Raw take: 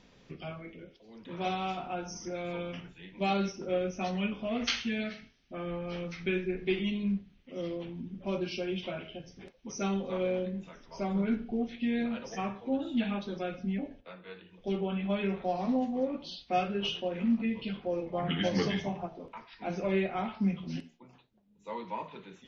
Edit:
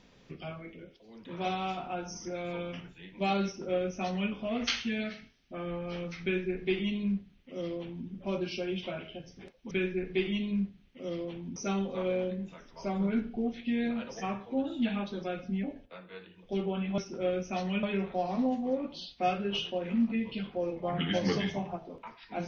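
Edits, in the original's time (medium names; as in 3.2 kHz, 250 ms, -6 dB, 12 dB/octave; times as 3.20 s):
3.46–4.31 s: copy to 15.13 s
6.23–8.08 s: copy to 9.71 s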